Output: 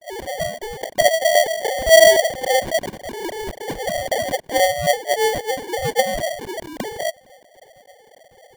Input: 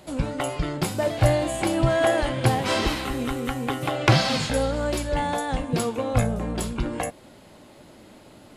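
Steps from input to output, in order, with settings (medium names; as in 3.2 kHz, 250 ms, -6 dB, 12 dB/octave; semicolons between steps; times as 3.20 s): formants replaced by sine waves; LFO low-pass saw up 3.7 Hz 490–1900 Hz; sample-rate reducer 1.3 kHz, jitter 0%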